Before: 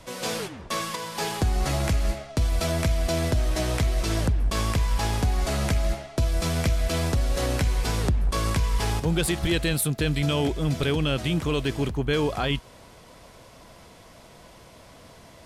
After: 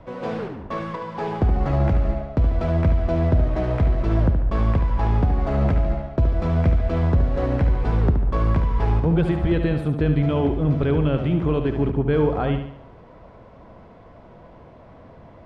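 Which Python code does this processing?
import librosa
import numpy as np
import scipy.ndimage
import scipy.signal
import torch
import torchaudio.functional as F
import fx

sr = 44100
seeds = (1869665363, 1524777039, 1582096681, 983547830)

p1 = scipy.signal.sosfilt(scipy.signal.bessel(2, 1000.0, 'lowpass', norm='mag', fs=sr, output='sos'), x)
p2 = p1 + fx.echo_feedback(p1, sr, ms=72, feedback_pct=45, wet_db=-8, dry=0)
y = p2 * 10.0 ** (4.5 / 20.0)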